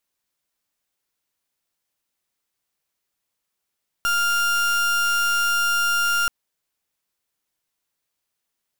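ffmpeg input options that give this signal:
-f lavfi -i "aevalsrc='0.0944*(2*lt(mod(1400*t,1),0.36)-1)':d=2.23:s=44100"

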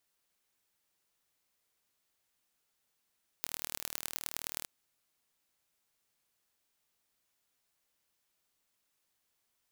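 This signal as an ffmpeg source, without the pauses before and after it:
-f lavfi -i "aevalsrc='0.447*eq(mod(n,1134),0)*(0.5+0.5*eq(mod(n,4536),0))':d=1.22:s=44100"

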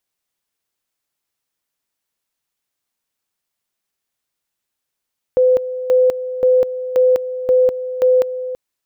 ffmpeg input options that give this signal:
-f lavfi -i "aevalsrc='pow(10,(-9-12.5*gte(mod(t,0.53),0.2))/20)*sin(2*PI*508*t)':d=3.18:s=44100"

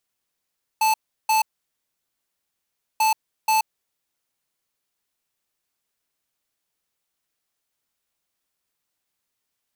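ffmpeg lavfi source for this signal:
-f lavfi -i "aevalsrc='0.119*(2*lt(mod(875*t,1),0.5)-1)*clip(min(mod(mod(t,2.19),0.48),0.13-mod(mod(t,2.19),0.48))/0.005,0,1)*lt(mod(t,2.19),0.96)':d=4.38:s=44100"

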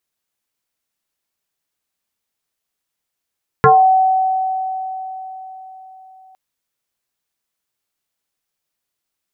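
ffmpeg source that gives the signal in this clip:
-f lavfi -i "aevalsrc='0.562*pow(10,-3*t/4.26)*sin(2*PI*756*t+2.9*pow(10,-3*t/0.3)*sin(2*PI*0.41*756*t))':d=2.71:s=44100"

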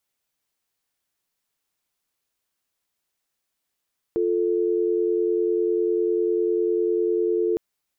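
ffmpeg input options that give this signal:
-f lavfi -i "aevalsrc='0.0794*(sin(2*PI*350*t)+sin(2*PI*440*t))':d=3.41:s=44100"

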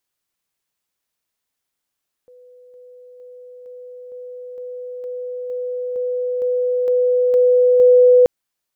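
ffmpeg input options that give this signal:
-f lavfi -i "aevalsrc='pow(10,(-43+3*floor(t/0.46))/20)*sin(2*PI*497*t)':d=5.98:s=44100"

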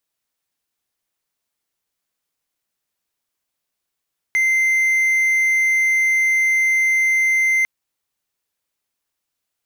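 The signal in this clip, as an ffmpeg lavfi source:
-f lavfi -i "aevalsrc='0.251*(1-4*abs(mod(2080*t+0.25,1)-0.5))':d=3.3:s=44100"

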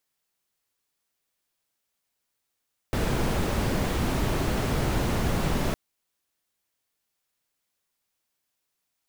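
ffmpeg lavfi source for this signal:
-f lavfi -i "anoisesrc=c=brown:a=0.263:d=2.81:r=44100:seed=1"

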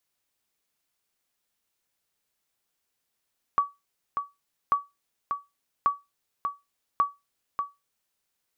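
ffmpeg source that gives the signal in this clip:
-f lavfi -i "aevalsrc='0.2*(sin(2*PI*1140*mod(t,1.14))*exp(-6.91*mod(t,1.14)/0.21)+0.473*sin(2*PI*1140*max(mod(t,1.14)-0.59,0))*exp(-6.91*max(mod(t,1.14)-0.59,0)/0.21))':d=4.56:s=44100"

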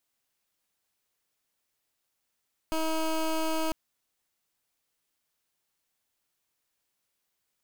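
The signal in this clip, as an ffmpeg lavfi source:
-f lavfi -i "aevalsrc='0.0398*(2*lt(mod(319*t,1),0.17)-1)':d=1:s=44100"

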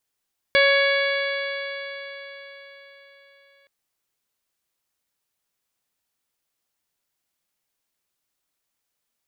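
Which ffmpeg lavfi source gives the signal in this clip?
-f lavfi -i "aevalsrc='0.141*pow(10,-3*t/4.33)*sin(2*PI*555.31*t)+0.0398*pow(10,-3*t/4.33)*sin(2*PI*1112.44*t)+0.112*pow(10,-3*t/4.33)*sin(2*PI*1673.22*t)+0.119*pow(10,-3*t/4.33)*sin(2*PI*2239.45*t)+0.0282*pow(10,-3*t/4.33)*sin(2*PI*2812.9*t)+0.0596*pow(10,-3*t/4.33)*sin(2*PI*3395.29*t)+0.0299*pow(10,-3*t/4.33)*sin(2*PI*3988.33*t)+0.0316*pow(10,-3*t/4.33)*sin(2*PI*4593.63*t)':d=3.12:s=44100"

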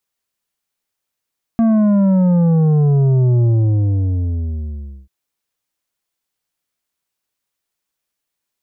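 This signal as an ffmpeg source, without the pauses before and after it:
-f lavfi -i "aevalsrc='0.282*clip((3.49-t)/1.64,0,1)*tanh(2.51*sin(2*PI*230*3.49/log(65/230)*(exp(log(65/230)*t/3.49)-1)))/tanh(2.51)':d=3.49:s=44100"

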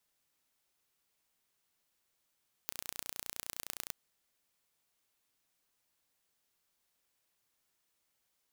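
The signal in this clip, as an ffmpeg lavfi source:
-f lavfi -i "aevalsrc='0.335*eq(mod(n,1485),0)*(0.5+0.5*eq(mod(n,4455),0))':d=1.24:s=44100"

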